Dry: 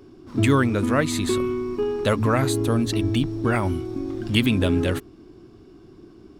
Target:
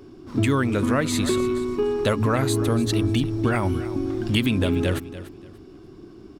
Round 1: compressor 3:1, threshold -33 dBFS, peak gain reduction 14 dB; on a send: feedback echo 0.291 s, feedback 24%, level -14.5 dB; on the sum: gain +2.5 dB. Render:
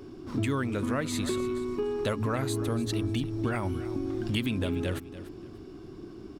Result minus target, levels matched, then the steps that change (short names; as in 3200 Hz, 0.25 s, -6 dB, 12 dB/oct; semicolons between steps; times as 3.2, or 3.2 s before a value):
compressor: peak gain reduction +8 dB
change: compressor 3:1, threshold -21 dBFS, peak gain reduction 6 dB